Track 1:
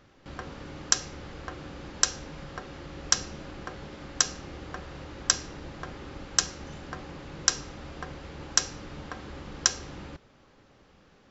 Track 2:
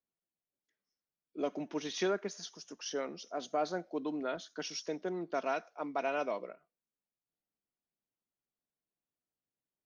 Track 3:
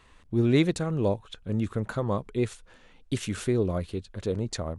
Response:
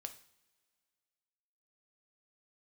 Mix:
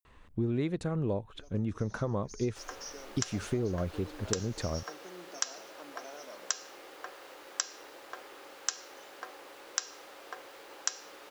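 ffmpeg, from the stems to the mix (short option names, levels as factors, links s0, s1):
-filter_complex "[0:a]highpass=f=410:w=0.5412,highpass=f=410:w=1.3066,acrusher=bits=8:mix=0:aa=0.000001,adelay=2300,volume=0.668[s0];[1:a]acrossover=split=1400|4300[s1][s2][s3];[s1]acompressor=threshold=0.0178:ratio=4[s4];[s2]acompressor=threshold=0.00158:ratio=4[s5];[s3]acompressor=threshold=0.00112:ratio=4[s6];[s4][s5][s6]amix=inputs=3:normalize=0,aexciter=amount=11.7:drive=6.9:freq=4700,volume=0.299,afade=t=in:st=2.06:d=0.59:silence=0.298538,asplit=2[s7][s8];[s8]volume=0.282[s9];[2:a]highshelf=f=3200:g=-10,adelay=50,volume=1[s10];[s9]aecho=0:1:127:1[s11];[s0][s7][s10][s11]amix=inputs=4:normalize=0,acompressor=threshold=0.0447:ratio=10"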